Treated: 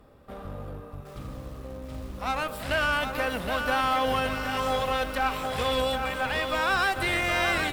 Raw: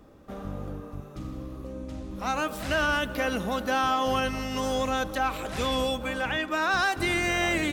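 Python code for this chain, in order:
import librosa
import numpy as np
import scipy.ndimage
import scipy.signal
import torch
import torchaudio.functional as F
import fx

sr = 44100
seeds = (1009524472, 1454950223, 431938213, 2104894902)

y = fx.cheby_harmonics(x, sr, harmonics=(4,), levels_db=(-17,), full_scale_db=-17.0)
y = fx.graphic_eq_31(y, sr, hz=(200, 315, 6300), db=(-6, -9, -10))
y = fx.echo_crushed(y, sr, ms=768, feedback_pct=55, bits=8, wet_db=-6)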